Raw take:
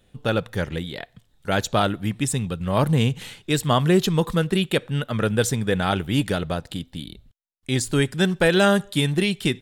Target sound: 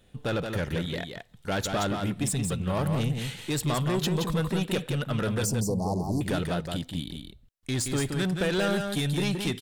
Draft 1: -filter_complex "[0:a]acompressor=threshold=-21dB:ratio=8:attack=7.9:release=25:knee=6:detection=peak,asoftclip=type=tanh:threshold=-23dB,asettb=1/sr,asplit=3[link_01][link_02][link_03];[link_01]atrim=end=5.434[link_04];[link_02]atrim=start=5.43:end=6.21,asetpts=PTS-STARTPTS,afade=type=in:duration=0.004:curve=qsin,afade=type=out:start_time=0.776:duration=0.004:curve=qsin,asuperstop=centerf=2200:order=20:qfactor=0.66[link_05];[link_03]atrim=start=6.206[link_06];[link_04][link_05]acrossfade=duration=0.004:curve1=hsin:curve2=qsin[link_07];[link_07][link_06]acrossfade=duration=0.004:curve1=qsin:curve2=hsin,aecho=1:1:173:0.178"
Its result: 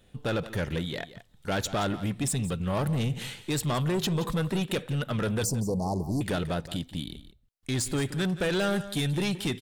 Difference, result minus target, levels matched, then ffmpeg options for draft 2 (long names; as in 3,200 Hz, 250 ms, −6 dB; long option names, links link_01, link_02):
echo-to-direct −9.5 dB
-filter_complex "[0:a]acompressor=threshold=-21dB:ratio=8:attack=7.9:release=25:knee=6:detection=peak,asoftclip=type=tanh:threshold=-23dB,asettb=1/sr,asplit=3[link_01][link_02][link_03];[link_01]atrim=end=5.434[link_04];[link_02]atrim=start=5.43:end=6.21,asetpts=PTS-STARTPTS,afade=type=in:duration=0.004:curve=qsin,afade=type=out:start_time=0.776:duration=0.004:curve=qsin,asuperstop=centerf=2200:order=20:qfactor=0.66[link_05];[link_03]atrim=start=6.206[link_06];[link_04][link_05]acrossfade=duration=0.004:curve1=hsin:curve2=qsin[link_07];[link_07][link_06]acrossfade=duration=0.004:curve1=qsin:curve2=hsin,aecho=1:1:173:0.531"